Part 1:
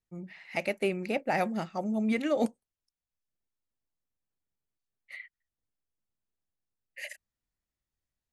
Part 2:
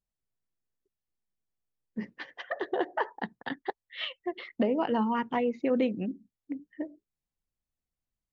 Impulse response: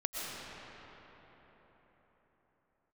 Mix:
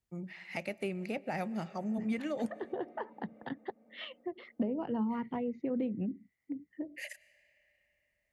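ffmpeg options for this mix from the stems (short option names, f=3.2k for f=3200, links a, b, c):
-filter_complex "[0:a]volume=0.5dB,asplit=2[a][b];[b]volume=-24dB[c];[1:a]tiltshelf=f=970:g=5.5,volume=-2.5dB,asplit=2[d][e];[e]apad=whole_len=367091[f];[a][f]sidechaincompress=threshold=-36dB:ratio=8:attack=16:release=115[g];[2:a]atrim=start_sample=2205[h];[c][h]afir=irnorm=-1:irlink=0[i];[g][d][i]amix=inputs=3:normalize=0,acrossover=split=170[j][k];[k]acompressor=threshold=-42dB:ratio=2[l];[j][l]amix=inputs=2:normalize=0,highpass=43,bandreject=f=3.9k:w=27"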